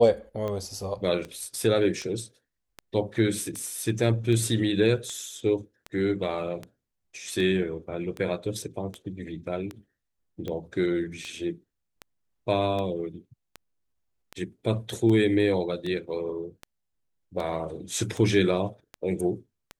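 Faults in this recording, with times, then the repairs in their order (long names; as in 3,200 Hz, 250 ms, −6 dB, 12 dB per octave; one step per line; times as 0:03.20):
scratch tick 78 rpm −21 dBFS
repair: click removal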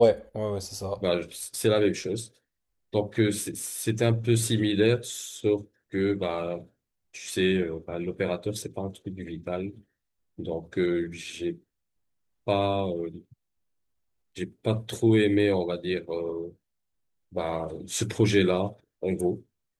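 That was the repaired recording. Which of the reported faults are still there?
none of them is left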